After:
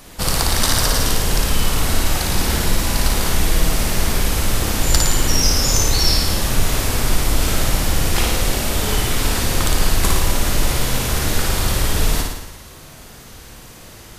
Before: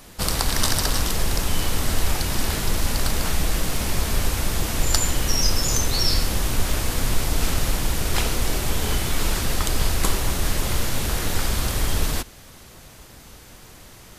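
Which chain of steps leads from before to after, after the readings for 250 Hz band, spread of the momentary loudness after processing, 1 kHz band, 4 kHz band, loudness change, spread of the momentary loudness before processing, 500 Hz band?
+5.0 dB, 4 LU, +5.0 dB, +5.0 dB, +5.0 dB, 4 LU, +5.5 dB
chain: soft clip -4.5 dBFS, distortion -32 dB; on a send: flutter echo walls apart 9.6 m, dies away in 0.93 s; on the sum: gain +3 dB

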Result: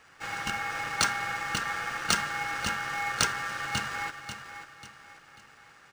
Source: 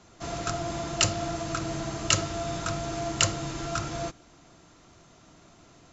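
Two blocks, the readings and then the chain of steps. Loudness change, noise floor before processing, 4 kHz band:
-0.5 dB, -56 dBFS, -1.5 dB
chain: ring modulator 1500 Hz; feedback echo 0.541 s, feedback 39%, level -10 dB; decimation joined by straight lines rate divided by 3×; gain +2 dB

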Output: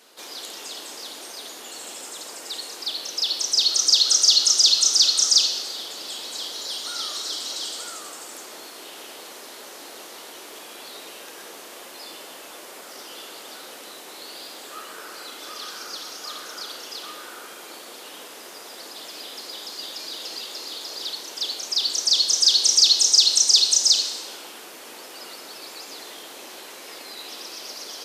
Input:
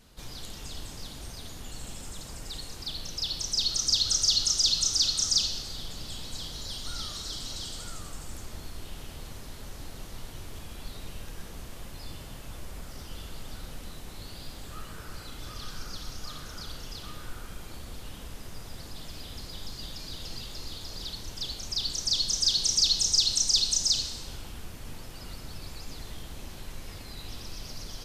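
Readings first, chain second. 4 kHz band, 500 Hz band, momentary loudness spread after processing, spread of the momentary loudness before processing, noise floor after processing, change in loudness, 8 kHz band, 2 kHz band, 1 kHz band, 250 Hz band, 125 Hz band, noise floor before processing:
+8.0 dB, +7.5 dB, 24 LU, 22 LU, -41 dBFS, +8.5 dB, +8.0 dB, +8.0 dB, +8.0 dB, -1.0 dB, under -20 dB, -44 dBFS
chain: HPF 340 Hz 24 dB/oct; gain +8 dB

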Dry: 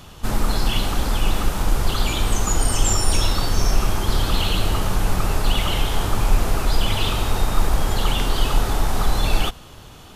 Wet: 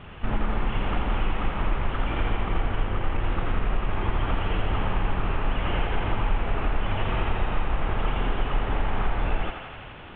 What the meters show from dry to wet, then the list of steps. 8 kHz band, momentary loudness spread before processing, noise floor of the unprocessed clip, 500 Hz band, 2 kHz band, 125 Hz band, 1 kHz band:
under -40 dB, 3 LU, -42 dBFS, -4.0 dB, -3.0 dB, -5.5 dB, -3.5 dB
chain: CVSD 16 kbps; compressor 3:1, threshold -21 dBFS, peak gain reduction 9 dB; on a send: thinning echo 84 ms, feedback 80%, high-pass 350 Hz, level -5.5 dB

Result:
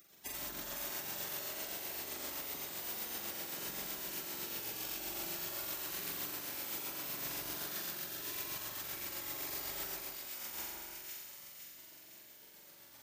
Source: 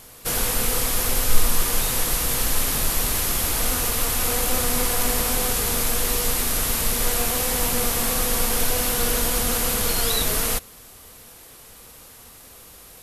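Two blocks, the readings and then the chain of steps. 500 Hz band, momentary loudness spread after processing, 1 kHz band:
-21.5 dB, 11 LU, -20.0 dB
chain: HPF 70 Hz 24 dB/oct; tilt shelf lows -9 dB, about 740 Hz; spectral gate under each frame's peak -25 dB weak; tremolo 7.8 Hz, depth 75%; flutter echo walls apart 7.5 m, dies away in 1.3 s; negative-ratio compressor -48 dBFS, ratio -0.5; low shelf 120 Hz -10 dB; split-band echo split 1700 Hz, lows 0.157 s, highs 0.51 s, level -3.5 dB; gain +4.5 dB

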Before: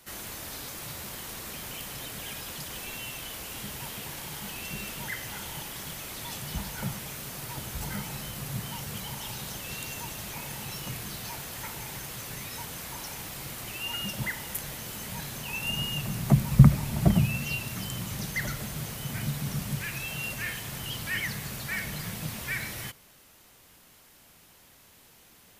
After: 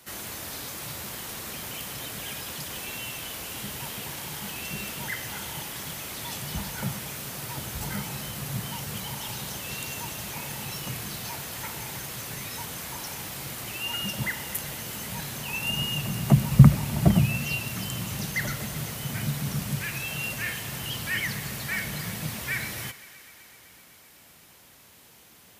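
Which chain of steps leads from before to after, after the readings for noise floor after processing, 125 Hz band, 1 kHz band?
-54 dBFS, +2.5 dB, +2.5 dB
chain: HPF 60 Hz; thinning echo 0.127 s, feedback 85%, level -18 dB; gain +2.5 dB

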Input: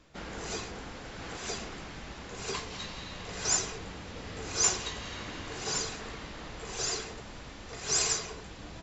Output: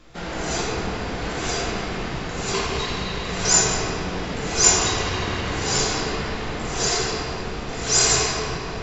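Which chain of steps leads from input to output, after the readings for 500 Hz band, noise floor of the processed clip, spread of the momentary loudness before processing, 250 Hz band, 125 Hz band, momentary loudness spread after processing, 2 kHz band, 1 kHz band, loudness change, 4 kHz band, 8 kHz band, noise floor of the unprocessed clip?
+14.0 dB, -30 dBFS, 16 LU, +14.5 dB, +15.0 dB, 12 LU, +13.0 dB, +14.0 dB, +11.5 dB, +11.5 dB, n/a, -46 dBFS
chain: shoebox room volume 190 m³, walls hard, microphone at 0.82 m; gain +7 dB

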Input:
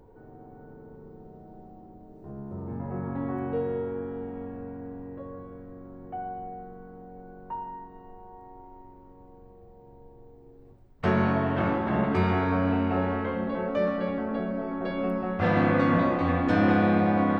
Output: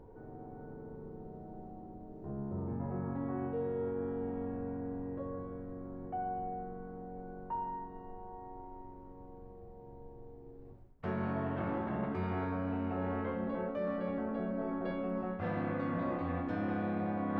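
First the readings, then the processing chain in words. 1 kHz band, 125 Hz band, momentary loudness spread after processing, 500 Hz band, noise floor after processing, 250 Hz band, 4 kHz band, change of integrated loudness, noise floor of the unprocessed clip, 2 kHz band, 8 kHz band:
-9.5 dB, -9.5 dB, 17 LU, -8.5 dB, -52 dBFS, -9.5 dB, under -15 dB, -11.0 dB, -51 dBFS, -13.5 dB, n/a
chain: high shelf 2900 Hz -10.5 dB; reverse; compressor 6:1, threshold -33 dBFS, peak gain reduction 14 dB; reverse

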